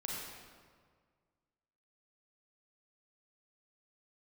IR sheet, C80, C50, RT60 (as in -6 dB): 0.5 dB, -2.0 dB, 1.8 s